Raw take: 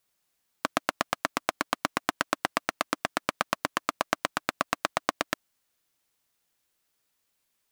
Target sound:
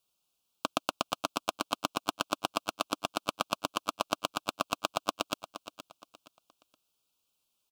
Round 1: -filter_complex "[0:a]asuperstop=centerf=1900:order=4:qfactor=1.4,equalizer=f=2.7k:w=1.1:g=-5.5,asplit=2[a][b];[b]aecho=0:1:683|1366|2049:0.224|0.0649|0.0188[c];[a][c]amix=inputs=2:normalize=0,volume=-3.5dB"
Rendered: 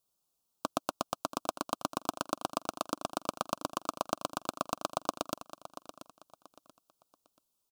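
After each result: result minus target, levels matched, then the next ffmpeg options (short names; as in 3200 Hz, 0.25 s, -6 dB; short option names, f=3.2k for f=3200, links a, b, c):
echo 0.213 s late; 2000 Hz band -4.0 dB
-filter_complex "[0:a]asuperstop=centerf=1900:order=4:qfactor=1.4,equalizer=f=2.7k:w=1.1:g=-5.5,asplit=2[a][b];[b]aecho=0:1:470|940|1410:0.224|0.0649|0.0188[c];[a][c]amix=inputs=2:normalize=0,volume=-3.5dB"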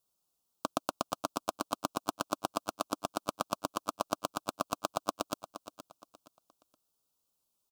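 2000 Hz band -4.5 dB
-filter_complex "[0:a]asuperstop=centerf=1900:order=4:qfactor=1.4,equalizer=f=2.7k:w=1.1:g=6,asplit=2[a][b];[b]aecho=0:1:470|940|1410:0.224|0.0649|0.0188[c];[a][c]amix=inputs=2:normalize=0,volume=-3.5dB"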